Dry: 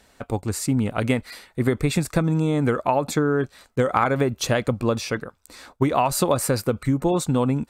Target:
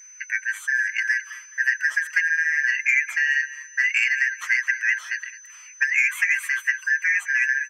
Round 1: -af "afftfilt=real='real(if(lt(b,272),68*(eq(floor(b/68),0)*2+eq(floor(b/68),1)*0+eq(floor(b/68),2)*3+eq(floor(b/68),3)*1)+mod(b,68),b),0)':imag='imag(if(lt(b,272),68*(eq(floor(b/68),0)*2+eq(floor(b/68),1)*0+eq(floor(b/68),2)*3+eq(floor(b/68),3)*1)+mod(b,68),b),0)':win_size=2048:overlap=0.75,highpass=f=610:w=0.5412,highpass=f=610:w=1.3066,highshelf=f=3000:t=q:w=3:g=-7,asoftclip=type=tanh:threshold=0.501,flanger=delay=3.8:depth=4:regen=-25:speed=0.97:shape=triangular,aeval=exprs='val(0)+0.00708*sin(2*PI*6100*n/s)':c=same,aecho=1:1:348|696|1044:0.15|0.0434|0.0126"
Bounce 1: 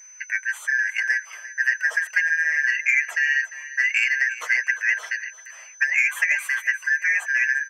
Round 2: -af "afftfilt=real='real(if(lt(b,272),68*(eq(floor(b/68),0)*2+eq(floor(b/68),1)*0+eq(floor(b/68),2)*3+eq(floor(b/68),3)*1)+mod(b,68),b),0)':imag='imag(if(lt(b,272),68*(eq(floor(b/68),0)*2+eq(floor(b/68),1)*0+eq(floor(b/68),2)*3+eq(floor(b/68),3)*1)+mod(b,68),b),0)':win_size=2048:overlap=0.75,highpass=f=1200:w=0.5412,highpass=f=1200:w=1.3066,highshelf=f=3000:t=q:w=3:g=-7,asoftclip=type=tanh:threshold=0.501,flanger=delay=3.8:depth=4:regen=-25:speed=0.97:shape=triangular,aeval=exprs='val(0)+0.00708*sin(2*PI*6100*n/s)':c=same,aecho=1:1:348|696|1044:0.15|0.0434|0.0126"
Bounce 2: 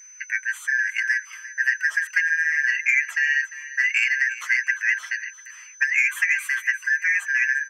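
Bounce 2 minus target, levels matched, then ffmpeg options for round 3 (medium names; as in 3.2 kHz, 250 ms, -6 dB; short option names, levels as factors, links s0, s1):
echo 135 ms late
-af "afftfilt=real='real(if(lt(b,272),68*(eq(floor(b/68),0)*2+eq(floor(b/68),1)*0+eq(floor(b/68),2)*3+eq(floor(b/68),3)*1)+mod(b,68),b),0)':imag='imag(if(lt(b,272),68*(eq(floor(b/68),0)*2+eq(floor(b/68),1)*0+eq(floor(b/68),2)*3+eq(floor(b/68),3)*1)+mod(b,68),b),0)':win_size=2048:overlap=0.75,highpass=f=1200:w=0.5412,highpass=f=1200:w=1.3066,highshelf=f=3000:t=q:w=3:g=-7,asoftclip=type=tanh:threshold=0.501,flanger=delay=3.8:depth=4:regen=-25:speed=0.97:shape=triangular,aeval=exprs='val(0)+0.00708*sin(2*PI*6100*n/s)':c=same,aecho=1:1:213|426|639:0.15|0.0434|0.0126"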